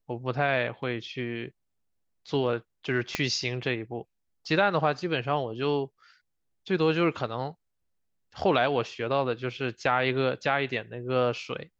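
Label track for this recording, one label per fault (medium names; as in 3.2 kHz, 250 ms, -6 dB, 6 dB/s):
3.150000	3.150000	pop -11 dBFS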